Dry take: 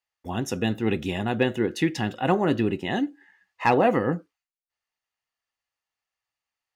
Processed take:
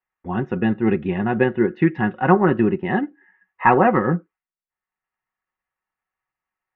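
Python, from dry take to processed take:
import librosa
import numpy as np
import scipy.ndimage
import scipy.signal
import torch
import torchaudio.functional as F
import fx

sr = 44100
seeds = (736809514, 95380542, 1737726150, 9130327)

y = scipy.signal.sosfilt(scipy.signal.butter(4, 2000.0, 'lowpass', fs=sr, output='sos'), x)
y = fx.peak_eq(y, sr, hz=600.0, db=-6.0, octaves=0.59)
y = y + 0.47 * np.pad(y, (int(5.4 * sr / 1000.0), 0))[:len(y)]
y = fx.dynamic_eq(y, sr, hz=1200.0, q=1.3, threshold_db=-35.0, ratio=4.0, max_db=4, at=(1.76, 4.07))
y = fx.transient(y, sr, attack_db=0, sustain_db=-4)
y = y * librosa.db_to_amplitude(5.5)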